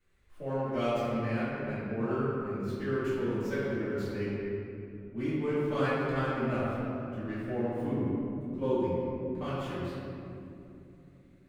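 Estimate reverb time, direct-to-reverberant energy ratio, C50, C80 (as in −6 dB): 2.9 s, −14.5 dB, −4.0 dB, −2.0 dB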